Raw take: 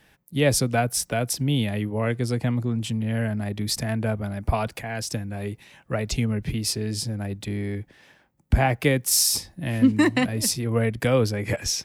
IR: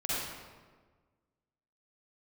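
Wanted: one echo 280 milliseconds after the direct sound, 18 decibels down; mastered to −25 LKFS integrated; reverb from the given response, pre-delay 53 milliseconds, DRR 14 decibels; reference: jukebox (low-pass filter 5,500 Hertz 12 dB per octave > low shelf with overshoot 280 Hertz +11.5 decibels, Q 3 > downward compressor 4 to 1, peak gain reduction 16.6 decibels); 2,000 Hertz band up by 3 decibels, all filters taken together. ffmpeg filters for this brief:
-filter_complex "[0:a]equalizer=frequency=2000:width_type=o:gain=4,aecho=1:1:280:0.126,asplit=2[link_01][link_02];[1:a]atrim=start_sample=2205,adelay=53[link_03];[link_02][link_03]afir=irnorm=-1:irlink=0,volume=-21dB[link_04];[link_01][link_04]amix=inputs=2:normalize=0,lowpass=5500,lowshelf=frequency=280:width_type=q:width=3:gain=11.5,acompressor=threshold=-19dB:ratio=4,volume=-2.5dB"

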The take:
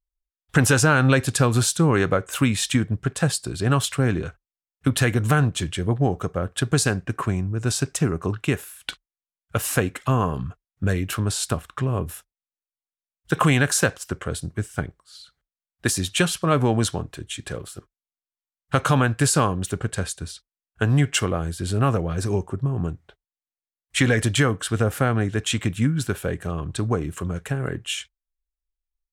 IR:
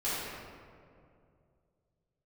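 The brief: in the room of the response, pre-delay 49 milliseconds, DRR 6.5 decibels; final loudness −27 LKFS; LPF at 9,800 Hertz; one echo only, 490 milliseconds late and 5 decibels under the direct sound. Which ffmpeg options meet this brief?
-filter_complex "[0:a]lowpass=9800,aecho=1:1:490:0.562,asplit=2[link_01][link_02];[1:a]atrim=start_sample=2205,adelay=49[link_03];[link_02][link_03]afir=irnorm=-1:irlink=0,volume=-14.5dB[link_04];[link_01][link_04]amix=inputs=2:normalize=0,volume=-5.5dB"

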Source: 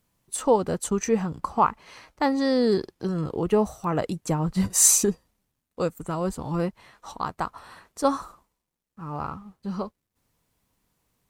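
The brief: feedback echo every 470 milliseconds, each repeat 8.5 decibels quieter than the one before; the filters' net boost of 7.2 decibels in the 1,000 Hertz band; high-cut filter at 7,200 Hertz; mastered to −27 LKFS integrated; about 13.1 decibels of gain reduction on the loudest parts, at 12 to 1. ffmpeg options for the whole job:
ffmpeg -i in.wav -af "lowpass=7200,equalizer=frequency=1000:width_type=o:gain=8.5,acompressor=threshold=-21dB:ratio=12,aecho=1:1:470|940|1410|1880:0.376|0.143|0.0543|0.0206,volume=1.5dB" out.wav

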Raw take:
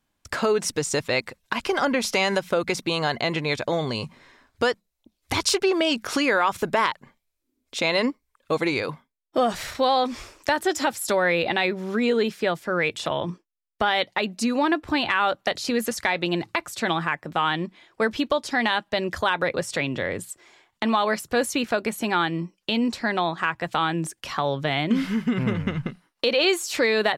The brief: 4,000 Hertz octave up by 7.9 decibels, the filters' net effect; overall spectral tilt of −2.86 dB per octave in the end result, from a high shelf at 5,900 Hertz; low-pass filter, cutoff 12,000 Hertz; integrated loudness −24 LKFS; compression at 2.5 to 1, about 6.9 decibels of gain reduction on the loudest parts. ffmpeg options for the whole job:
ffmpeg -i in.wav -af "lowpass=12000,equalizer=frequency=4000:width_type=o:gain=8.5,highshelf=frequency=5900:gain=4,acompressor=threshold=-22dB:ratio=2.5,volume=1.5dB" out.wav

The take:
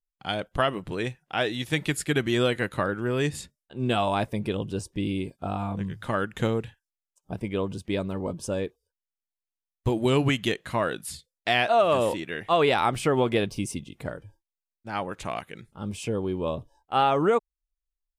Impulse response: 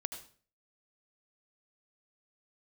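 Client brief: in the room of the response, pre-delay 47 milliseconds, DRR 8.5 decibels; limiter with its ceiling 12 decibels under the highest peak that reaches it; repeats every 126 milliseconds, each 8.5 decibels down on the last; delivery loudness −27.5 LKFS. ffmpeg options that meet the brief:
-filter_complex "[0:a]alimiter=limit=-21dB:level=0:latency=1,aecho=1:1:126|252|378|504:0.376|0.143|0.0543|0.0206,asplit=2[link_01][link_02];[1:a]atrim=start_sample=2205,adelay=47[link_03];[link_02][link_03]afir=irnorm=-1:irlink=0,volume=-8.5dB[link_04];[link_01][link_04]amix=inputs=2:normalize=0,volume=4dB"

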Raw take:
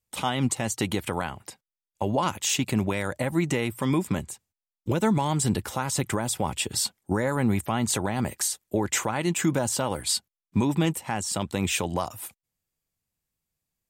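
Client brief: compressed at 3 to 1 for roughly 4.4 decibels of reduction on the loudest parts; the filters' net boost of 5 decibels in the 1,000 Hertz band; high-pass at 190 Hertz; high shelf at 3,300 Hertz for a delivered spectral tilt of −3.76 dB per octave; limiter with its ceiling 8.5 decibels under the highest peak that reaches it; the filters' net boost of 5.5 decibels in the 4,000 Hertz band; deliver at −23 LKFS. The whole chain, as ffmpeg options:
ffmpeg -i in.wav -af "highpass=190,equalizer=frequency=1000:width_type=o:gain=5.5,highshelf=frequency=3300:gain=5,equalizer=frequency=4000:width_type=o:gain=3,acompressor=threshold=-23dB:ratio=3,volume=8dB,alimiter=limit=-11.5dB:level=0:latency=1" out.wav

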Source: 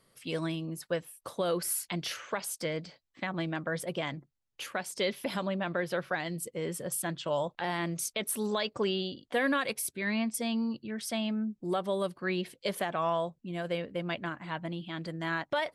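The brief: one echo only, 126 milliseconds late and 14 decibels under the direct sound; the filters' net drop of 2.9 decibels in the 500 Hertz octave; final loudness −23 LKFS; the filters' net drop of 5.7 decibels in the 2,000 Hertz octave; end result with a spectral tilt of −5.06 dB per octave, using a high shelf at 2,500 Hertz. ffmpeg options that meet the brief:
ffmpeg -i in.wav -af "equalizer=frequency=500:width_type=o:gain=-3,equalizer=frequency=2000:width_type=o:gain=-4,highshelf=frequency=2500:gain=-7,aecho=1:1:126:0.2,volume=13dB" out.wav

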